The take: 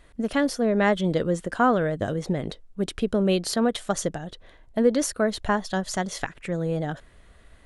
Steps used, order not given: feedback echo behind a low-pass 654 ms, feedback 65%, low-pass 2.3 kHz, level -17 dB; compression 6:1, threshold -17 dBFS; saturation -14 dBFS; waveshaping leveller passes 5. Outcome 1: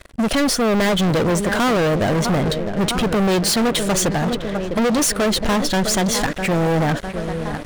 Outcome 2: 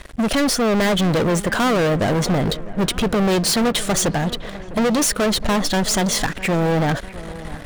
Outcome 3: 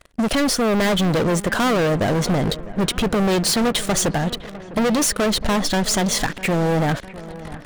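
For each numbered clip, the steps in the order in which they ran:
compression > feedback echo behind a low-pass > waveshaping leveller > saturation; compression > saturation > waveshaping leveller > feedback echo behind a low-pass; waveshaping leveller > saturation > compression > feedback echo behind a low-pass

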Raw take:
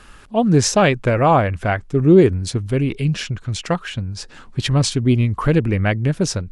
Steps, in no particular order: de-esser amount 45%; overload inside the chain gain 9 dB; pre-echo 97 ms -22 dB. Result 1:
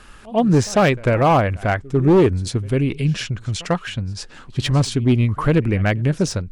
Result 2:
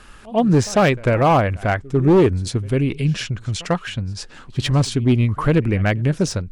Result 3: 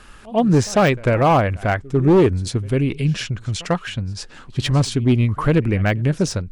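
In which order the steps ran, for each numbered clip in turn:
pre-echo > de-esser > overload inside the chain; de-esser > pre-echo > overload inside the chain; pre-echo > overload inside the chain > de-esser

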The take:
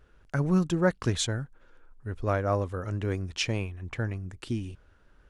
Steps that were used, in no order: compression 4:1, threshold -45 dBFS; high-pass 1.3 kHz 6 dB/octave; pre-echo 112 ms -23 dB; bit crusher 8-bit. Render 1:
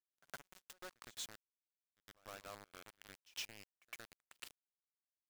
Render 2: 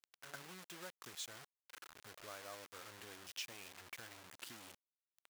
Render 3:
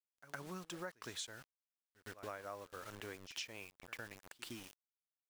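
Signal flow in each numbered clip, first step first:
compression > high-pass > bit crusher > pre-echo; pre-echo > compression > bit crusher > high-pass; high-pass > bit crusher > pre-echo > compression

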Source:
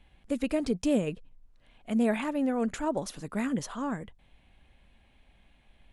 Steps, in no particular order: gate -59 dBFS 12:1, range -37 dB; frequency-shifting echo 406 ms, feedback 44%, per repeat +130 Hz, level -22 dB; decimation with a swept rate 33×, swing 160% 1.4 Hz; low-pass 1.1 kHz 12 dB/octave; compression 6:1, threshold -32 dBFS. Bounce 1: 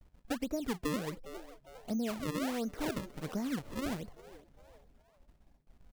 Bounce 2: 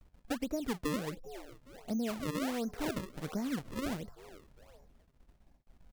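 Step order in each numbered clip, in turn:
low-pass > decimation with a swept rate > gate > frequency-shifting echo > compression; frequency-shifting echo > low-pass > gate > decimation with a swept rate > compression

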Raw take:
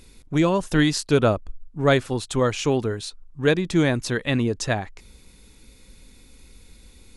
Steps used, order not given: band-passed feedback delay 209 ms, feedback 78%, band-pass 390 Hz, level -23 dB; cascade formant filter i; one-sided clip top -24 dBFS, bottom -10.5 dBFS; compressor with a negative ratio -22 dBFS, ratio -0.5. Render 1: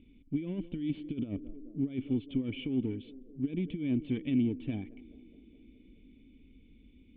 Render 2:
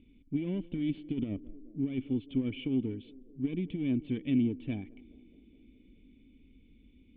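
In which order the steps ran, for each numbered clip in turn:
band-passed feedback delay > compressor with a negative ratio > one-sided clip > cascade formant filter; one-sided clip > band-passed feedback delay > compressor with a negative ratio > cascade formant filter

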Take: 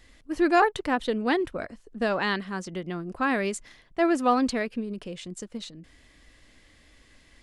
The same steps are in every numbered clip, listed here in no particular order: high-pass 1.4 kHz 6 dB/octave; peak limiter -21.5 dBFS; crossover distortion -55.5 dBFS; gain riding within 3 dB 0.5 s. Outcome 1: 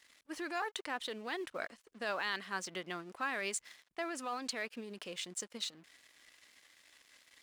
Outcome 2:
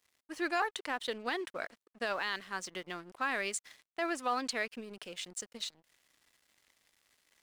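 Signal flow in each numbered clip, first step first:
peak limiter > gain riding > crossover distortion > high-pass; high-pass > gain riding > peak limiter > crossover distortion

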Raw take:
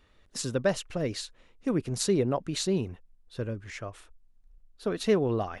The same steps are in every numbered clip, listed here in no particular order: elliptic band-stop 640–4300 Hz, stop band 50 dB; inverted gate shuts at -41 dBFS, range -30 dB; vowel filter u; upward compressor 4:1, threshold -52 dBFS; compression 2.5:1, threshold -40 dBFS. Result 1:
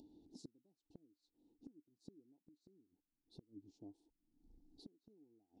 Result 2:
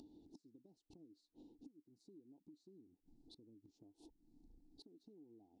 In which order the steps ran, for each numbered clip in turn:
vowel filter > upward compressor > elliptic band-stop > inverted gate > compression; elliptic band-stop > compression > inverted gate > vowel filter > upward compressor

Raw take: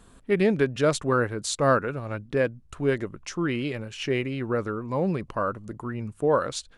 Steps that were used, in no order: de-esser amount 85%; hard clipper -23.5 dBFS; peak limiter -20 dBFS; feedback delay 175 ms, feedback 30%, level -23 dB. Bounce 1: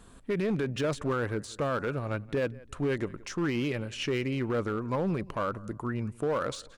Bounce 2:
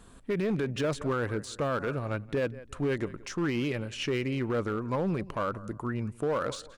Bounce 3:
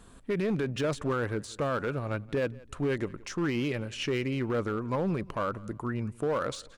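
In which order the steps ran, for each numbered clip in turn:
peak limiter > de-esser > feedback delay > hard clipper; de-esser > feedback delay > peak limiter > hard clipper; peak limiter > de-esser > hard clipper > feedback delay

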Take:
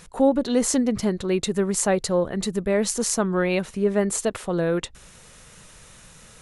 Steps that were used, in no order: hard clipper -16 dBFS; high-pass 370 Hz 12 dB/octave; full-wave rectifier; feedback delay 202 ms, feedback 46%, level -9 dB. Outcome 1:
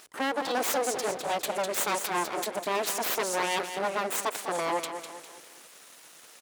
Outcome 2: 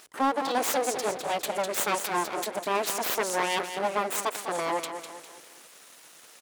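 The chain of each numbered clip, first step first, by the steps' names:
hard clipper > feedback delay > full-wave rectifier > high-pass; feedback delay > full-wave rectifier > high-pass > hard clipper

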